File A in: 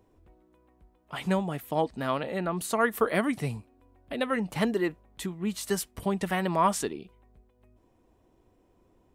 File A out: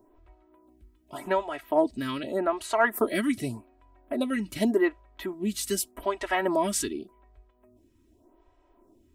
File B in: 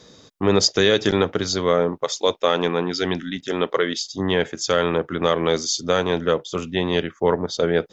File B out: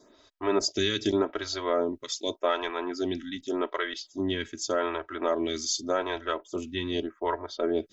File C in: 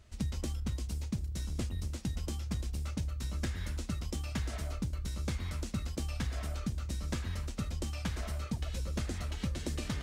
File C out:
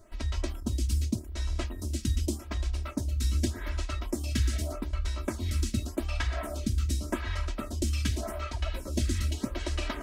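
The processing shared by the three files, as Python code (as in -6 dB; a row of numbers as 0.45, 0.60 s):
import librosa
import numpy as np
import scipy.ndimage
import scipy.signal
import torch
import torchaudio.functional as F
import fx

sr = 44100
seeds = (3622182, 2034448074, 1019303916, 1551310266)

y = x + 0.82 * np.pad(x, (int(3.1 * sr / 1000.0), 0))[:len(x)]
y = fx.stagger_phaser(y, sr, hz=0.85)
y = y * 10.0 ** (-30 / 20.0) / np.sqrt(np.mean(np.square(y)))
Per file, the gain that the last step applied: +3.0, -7.0, +7.5 dB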